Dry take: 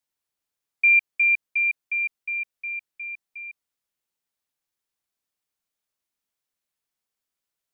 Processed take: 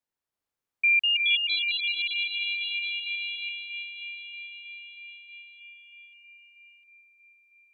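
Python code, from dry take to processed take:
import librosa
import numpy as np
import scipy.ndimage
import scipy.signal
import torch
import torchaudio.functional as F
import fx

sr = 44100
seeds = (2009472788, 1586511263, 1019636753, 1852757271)

y = fx.high_shelf(x, sr, hz=2200.0, db=-9.0)
y = fx.echo_wet_highpass(y, sr, ms=318, feedback_pct=81, hz=2100.0, wet_db=-8.0)
y = fx.echo_pitch(y, sr, ms=333, semitones=3, count=3, db_per_echo=-3.0)
y = fx.band_squash(y, sr, depth_pct=40, at=(1.49, 3.49))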